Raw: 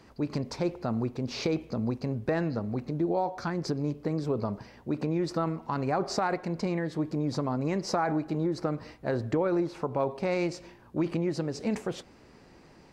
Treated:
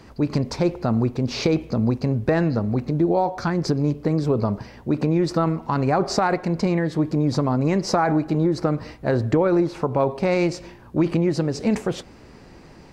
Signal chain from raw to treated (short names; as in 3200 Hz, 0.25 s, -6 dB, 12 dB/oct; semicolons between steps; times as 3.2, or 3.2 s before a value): low shelf 130 Hz +6 dB; gain +7.5 dB